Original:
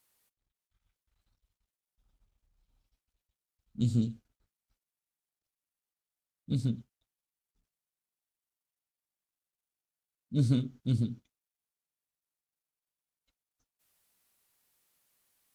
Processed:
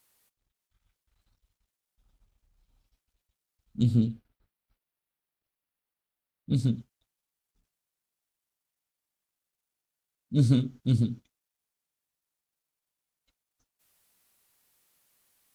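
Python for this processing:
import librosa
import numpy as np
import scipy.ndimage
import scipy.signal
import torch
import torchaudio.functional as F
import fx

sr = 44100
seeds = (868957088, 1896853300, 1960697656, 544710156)

y = fx.peak_eq(x, sr, hz=6800.0, db=-12.5, octaves=0.92, at=(3.83, 6.54))
y = F.gain(torch.from_numpy(y), 4.5).numpy()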